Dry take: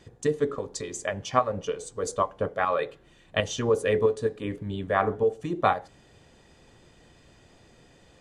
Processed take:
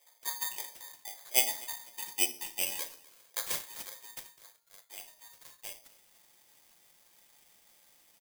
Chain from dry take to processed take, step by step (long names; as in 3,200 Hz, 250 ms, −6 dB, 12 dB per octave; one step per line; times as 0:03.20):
sub-octave generator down 1 octave, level +4 dB
bass and treble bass −7 dB, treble +9 dB
0:00.79–0:01.19: downward compressor 10 to 1, threshold −33 dBFS, peak gain reduction 10.5 dB
band-pass filter sweep 860 Hz → 5,900 Hz, 0:01.90–0:03.90
0:04.50–0:05.02: slack as between gear wheels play −54 dBFS
ring modulation 1,400 Hz
low shelf with overshoot 320 Hz −11 dB, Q 1.5
echo with shifted repeats 250 ms, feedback 31%, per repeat −30 Hz, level −22 dB
rectangular room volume 370 cubic metres, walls furnished, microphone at 0.9 metres
bad sample-rate conversion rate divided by 8×, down none, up zero stuff
level −6 dB